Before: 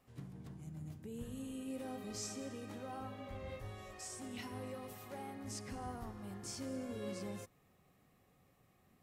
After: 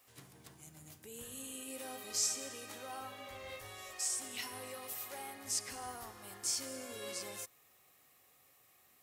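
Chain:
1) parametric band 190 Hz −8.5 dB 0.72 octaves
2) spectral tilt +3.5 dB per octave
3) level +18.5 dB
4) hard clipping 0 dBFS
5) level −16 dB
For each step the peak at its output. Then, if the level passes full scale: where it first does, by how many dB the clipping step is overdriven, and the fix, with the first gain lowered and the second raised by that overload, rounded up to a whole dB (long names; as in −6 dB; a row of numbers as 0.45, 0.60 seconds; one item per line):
−31.0, −23.0, −4.5, −4.5, −20.5 dBFS
no step passes full scale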